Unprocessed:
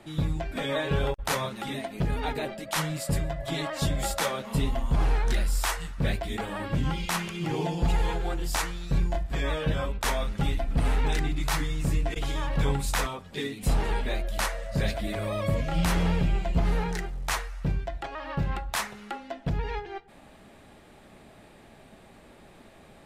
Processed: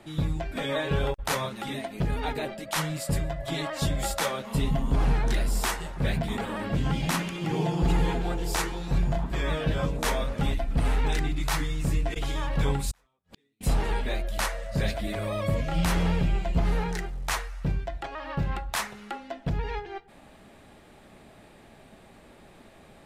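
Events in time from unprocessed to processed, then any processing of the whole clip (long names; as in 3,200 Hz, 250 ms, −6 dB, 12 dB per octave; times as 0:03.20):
0:04.41–0:10.54: echo through a band-pass that steps 161 ms, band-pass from 180 Hz, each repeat 0.7 octaves, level 0 dB
0:12.91–0:13.61: gate with flip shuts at −31 dBFS, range −40 dB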